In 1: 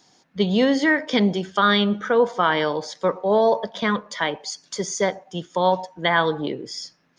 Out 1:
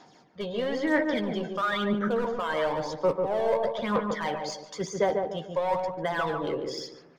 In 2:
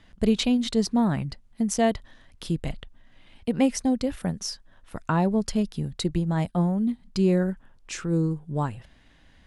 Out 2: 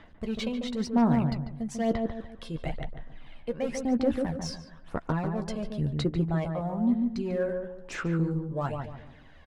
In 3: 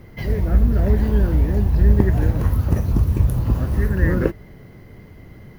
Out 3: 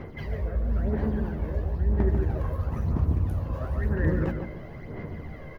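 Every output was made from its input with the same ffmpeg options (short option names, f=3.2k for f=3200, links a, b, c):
-filter_complex "[0:a]areverse,acompressor=threshold=-28dB:ratio=4,areverse,asplit=2[a][b];[b]highpass=f=720:p=1,volume=11dB,asoftclip=type=tanh:threshold=-16dB[c];[a][c]amix=inputs=2:normalize=0,lowpass=f=1.1k:p=1,volume=-6dB,asoftclip=type=hard:threshold=-24dB,aphaser=in_gain=1:out_gain=1:delay=1.9:decay=0.56:speed=1:type=sinusoidal,asplit=2[d][e];[e]adelay=13,volume=-9dB[f];[d][f]amix=inputs=2:normalize=0,asplit=2[g][h];[h]adelay=145,lowpass=f=1k:p=1,volume=-3dB,asplit=2[i][j];[j]adelay=145,lowpass=f=1k:p=1,volume=0.39,asplit=2[k][l];[l]adelay=145,lowpass=f=1k:p=1,volume=0.39,asplit=2[m][n];[n]adelay=145,lowpass=f=1k:p=1,volume=0.39,asplit=2[o][p];[p]adelay=145,lowpass=f=1k:p=1,volume=0.39[q];[g][i][k][m][o][q]amix=inputs=6:normalize=0"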